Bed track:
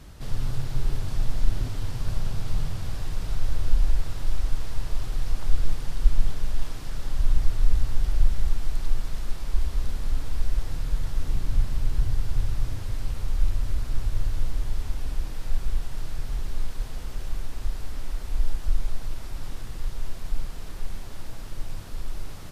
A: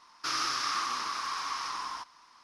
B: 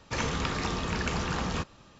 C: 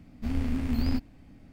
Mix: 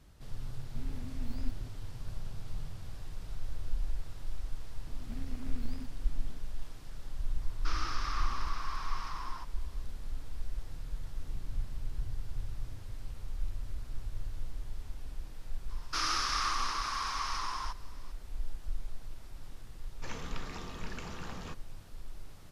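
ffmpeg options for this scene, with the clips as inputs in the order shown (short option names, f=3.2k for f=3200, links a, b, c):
-filter_complex "[3:a]asplit=2[a][b];[1:a]asplit=2[c][d];[0:a]volume=-13dB[e];[b]acompressor=threshold=-38dB:ratio=6:attack=3.2:release=140:knee=1:detection=peak[f];[c]aemphasis=mode=reproduction:type=bsi[g];[a]atrim=end=1.52,asetpts=PTS-STARTPTS,volume=-16dB,afade=t=in:d=0.004:c=hsin,afade=t=out:st=1.516:d=0.004:c=hsin,adelay=520[h];[f]atrim=end=1.52,asetpts=PTS-STARTPTS,volume=-2dB,afade=t=in:d=0.004:c=hsin,afade=t=out:st=1.516:d=0.004:c=hsin,adelay=4870[i];[g]atrim=end=2.43,asetpts=PTS-STARTPTS,volume=-6dB,afade=t=in:d=0.004:c=hsin,afade=t=out:st=2.426:d=0.004:c=hsin,adelay=7410[j];[d]atrim=end=2.43,asetpts=PTS-STARTPTS,volume=-1dB,afade=t=in:d=0.004:c=hsin,afade=t=out:st=2.426:d=0.004:c=hsin,adelay=15690[k];[2:a]atrim=end=1.99,asetpts=PTS-STARTPTS,volume=-13dB,afade=t=in:d=0.004:c=hsin,afade=t=out:st=1.986:d=0.004:c=hsin,adelay=19910[l];[e][h][i][j][k][l]amix=inputs=6:normalize=0"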